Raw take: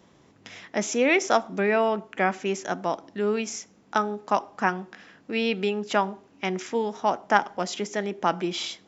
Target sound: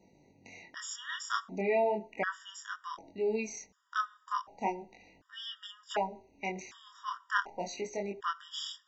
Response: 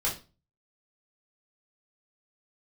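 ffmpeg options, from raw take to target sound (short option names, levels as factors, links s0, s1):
-af "asubboost=boost=10.5:cutoff=52,flanger=delay=20:depth=6.8:speed=0.36,afftfilt=real='re*gt(sin(2*PI*0.67*pts/sr)*(1-2*mod(floor(b*sr/1024/950),2)),0)':imag='im*gt(sin(2*PI*0.67*pts/sr)*(1-2*mod(floor(b*sr/1024/950),2)),0)':win_size=1024:overlap=0.75,volume=0.75"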